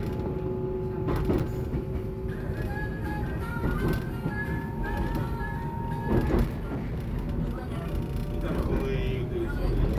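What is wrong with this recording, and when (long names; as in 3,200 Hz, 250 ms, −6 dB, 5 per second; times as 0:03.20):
0:01.39–0:01.40: drop-out 6.6 ms
0:06.45–0:07.08: clipping −28 dBFS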